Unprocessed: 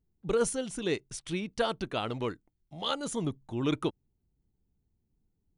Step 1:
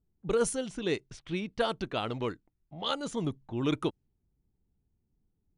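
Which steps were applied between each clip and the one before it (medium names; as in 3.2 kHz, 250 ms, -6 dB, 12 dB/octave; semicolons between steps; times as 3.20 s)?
level-controlled noise filter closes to 1.4 kHz, open at -26.5 dBFS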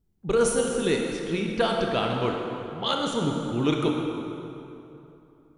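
reverberation RT60 3.0 s, pre-delay 18 ms, DRR 0.5 dB; trim +4.5 dB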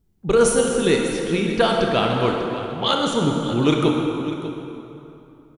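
delay 596 ms -14.5 dB; trim +6 dB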